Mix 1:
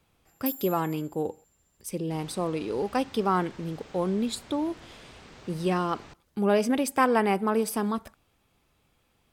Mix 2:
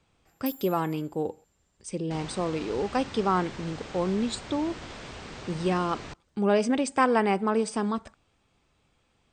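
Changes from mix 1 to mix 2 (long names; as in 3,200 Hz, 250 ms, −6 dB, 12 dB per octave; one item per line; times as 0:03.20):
speech: add linear-phase brick-wall low-pass 9,000 Hz
first sound −6.0 dB
second sound +8.0 dB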